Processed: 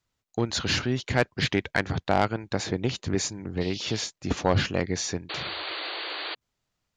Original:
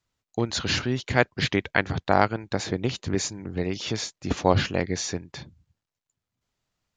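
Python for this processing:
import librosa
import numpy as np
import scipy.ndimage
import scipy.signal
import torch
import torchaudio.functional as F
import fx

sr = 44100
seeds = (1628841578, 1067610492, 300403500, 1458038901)

y = fx.dmg_noise_band(x, sr, seeds[0], low_hz=2600.0, high_hz=4900.0, level_db=-42.0, at=(3.6, 4.05), fade=0.02)
y = 10.0 ** (-11.0 / 20.0) * np.tanh(y / 10.0 ** (-11.0 / 20.0))
y = fx.spec_paint(y, sr, seeds[1], shape='noise', start_s=5.29, length_s=1.06, low_hz=290.0, high_hz=4700.0, level_db=-34.0)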